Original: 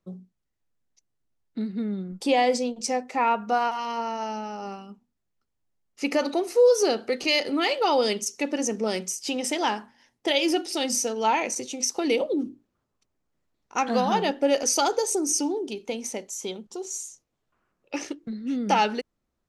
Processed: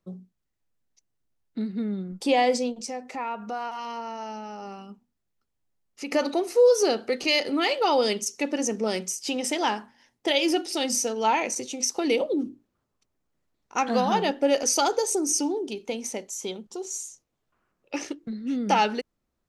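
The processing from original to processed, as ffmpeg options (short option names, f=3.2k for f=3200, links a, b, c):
-filter_complex "[0:a]asettb=1/sr,asplit=3[a][b][c];[a]atrim=end=2.774[d];[b]atrim=start=2.77:end=6.12,asetpts=PTS-STARTPTS,afade=t=in:d=0.004:c=qsin,afade=t=out:st=3.346:d=0.004:c=qsin,acompressor=threshold=-35dB:ratio=2:attack=3.2:release=140:knee=1:detection=peak[e];[c]atrim=start=6.116[f];[d][e]acrossfade=d=0.004:c1=hsin:c2=qsin[g];[g][f]acrossfade=d=0.004:c1=qsin:c2=hsin"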